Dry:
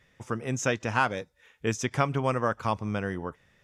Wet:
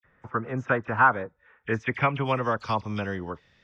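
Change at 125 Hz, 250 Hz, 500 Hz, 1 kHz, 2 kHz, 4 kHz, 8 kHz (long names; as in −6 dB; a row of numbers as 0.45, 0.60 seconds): 0.0 dB, 0.0 dB, +0.5 dB, +4.5 dB, +5.0 dB, −2.0 dB, below −20 dB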